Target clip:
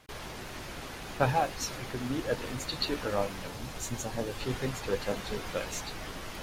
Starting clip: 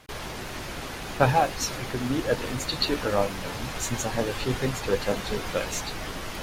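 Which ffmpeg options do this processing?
ffmpeg -i in.wav -filter_complex "[0:a]asettb=1/sr,asplit=3[link_01][link_02][link_03];[link_01]atrim=end=3.474[link_04];[link_02]atrim=start=3.47:end=4.41,asetpts=PTS-STARTPTS,afade=type=in:duration=0.004:curve=qsin,afade=type=out:start_time=0.936:duration=0.004:curve=qsin,equalizer=frequency=1800:width_type=o:width=2.4:gain=-4[link_05];[link_03]atrim=start=4.406[link_06];[link_04][link_05]acrossfade=duration=0.004:curve1=hsin:curve2=qsin[link_07];[link_07][link_06]acrossfade=duration=0.004:curve1=qsin:curve2=hsin,volume=-6dB" out.wav

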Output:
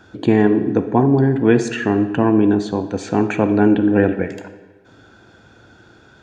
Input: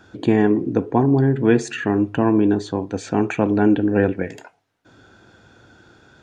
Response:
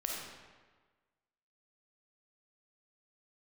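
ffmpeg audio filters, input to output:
-filter_complex "[0:a]asplit=2[link_01][link_02];[1:a]atrim=start_sample=2205,lowpass=7300[link_03];[link_02][link_03]afir=irnorm=-1:irlink=0,volume=-9.5dB[link_04];[link_01][link_04]amix=inputs=2:normalize=0"

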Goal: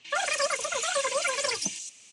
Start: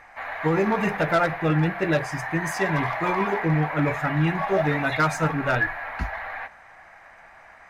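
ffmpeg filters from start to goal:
ffmpeg -i in.wav -filter_complex "[0:a]highpass=43,highshelf=frequency=3200:gain=8.5,acrossover=split=1100|4000[link_01][link_02][link_03];[link_03]adelay=190[link_04];[link_02]adelay=380[link_05];[link_01][link_05][link_04]amix=inputs=3:normalize=0,acrossover=split=140|620|4600[link_06][link_07][link_08][link_09];[link_09]aeval=exprs='0.0596*sin(PI/2*8.91*val(0)/0.0596)':channel_layout=same[link_10];[link_06][link_07][link_08][link_10]amix=inputs=4:normalize=0,highshelf=frequency=6400:gain=-11,asetrate=159642,aresample=44100,volume=-5dB" -ar 22050 -c:a aac -b:a 64k out.aac

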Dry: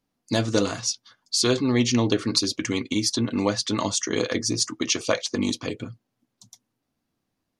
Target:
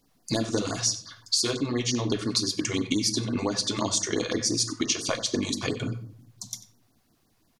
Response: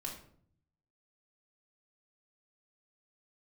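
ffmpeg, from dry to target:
-filter_complex "[0:a]highshelf=frequency=6000:gain=5,acompressor=threshold=-33dB:ratio=12,asplit=2[link_01][link_02];[link_02]adelay=93.29,volume=-16dB,highshelf=frequency=4000:gain=-2.1[link_03];[link_01][link_03]amix=inputs=2:normalize=0,asplit=2[link_04][link_05];[1:a]atrim=start_sample=2205[link_06];[link_05][link_06]afir=irnorm=-1:irlink=0,volume=-2dB[link_07];[link_04][link_07]amix=inputs=2:normalize=0,afftfilt=real='re*(1-between(b*sr/1024,220*pow(3000/220,0.5+0.5*sin(2*PI*5.8*pts/sr))/1.41,220*pow(3000/220,0.5+0.5*sin(2*PI*5.8*pts/sr))*1.41))':imag='im*(1-between(b*sr/1024,220*pow(3000/220,0.5+0.5*sin(2*PI*5.8*pts/sr))/1.41,220*pow(3000/220,0.5+0.5*sin(2*PI*5.8*pts/sr))*1.41))':win_size=1024:overlap=0.75,volume=7dB"

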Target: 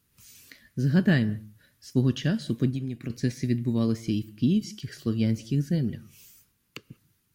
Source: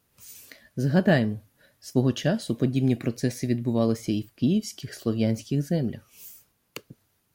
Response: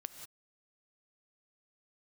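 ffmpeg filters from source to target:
-filter_complex "[0:a]acrossover=split=5800[link_01][link_02];[link_02]acompressor=threshold=-51dB:ratio=4:attack=1:release=60[link_03];[link_01][link_03]amix=inputs=2:normalize=0,equalizer=frequency=660:width=1.1:gain=-14,asettb=1/sr,asplit=3[link_04][link_05][link_06];[link_04]atrim=end=2.704[link_07];[link_05]atrim=start=2.7:end=3.1,asetpts=PTS-STARTPTS,afade=type=in:duration=0.004:curve=qsin,afade=type=out:start_time=0.396:duration=0.004:curve=qsin,acompressor=threshold=-32dB:ratio=4[link_08];[link_06]atrim=start=3.096[link_09];[link_07][link_08]acrossfade=duration=0.004:curve1=hsin:curve2=qsin[link_10];[link_10][link_09]acrossfade=duration=0.004:curve1=qsin:curve2=hsin,asplit=2[link_11][link_12];[1:a]atrim=start_sample=2205,lowpass=2200[link_13];[link_12][link_13]afir=irnorm=-1:irlink=0,volume=-9dB[link_14];[link_11][link_14]amix=inputs=2:normalize=0"

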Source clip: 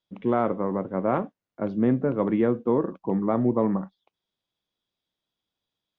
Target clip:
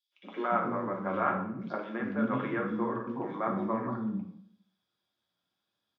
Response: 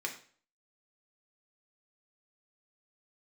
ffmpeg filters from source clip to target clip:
-filter_complex "[0:a]acrossover=split=1200[link_01][link_02];[link_01]acompressor=threshold=-32dB:ratio=6[link_03];[link_03][link_02]amix=inputs=2:normalize=0,acrossover=split=310|2900[link_04][link_05][link_06];[link_05]adelay=120[link_07];[link_04]adelay=400[link_08];[link_08][link_07][link_06]amix=inputs=3:normalize=0[link_09];[1:a]atrim=start_sample=2205,asetrate=30429,aresample=44100[link_10];[link_09][link_10]afir=irnorm=-1:irlink=0"

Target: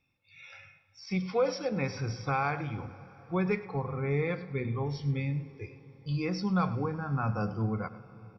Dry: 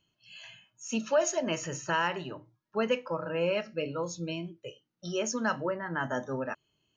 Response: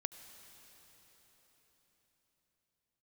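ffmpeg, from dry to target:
-filter_complex "[0:a]asetrate=36603,aresample=44100,asubboost=boost=5.5:cutoff=150,acrossover=split=4800[link_01][link_02];[link_02]acompressor=threshold=-48dB:ratio=4:attack=1:release=60[link_03];[link_01][link_03]amix=inputs=2:normalize=0,aecho=1:1:103:0.141,asplit=2[link_04][link_05];[1:a]atrim=start_sample=2205,highshelf=frequency=3700:gain=-10.5[link_06];[link_05][link_06]afir=irnorm=-1:irlink=0,volume=0dB[link_07];[link_04][link_07]amix=inputs=2:normalize=0,volume=-5.5dB"

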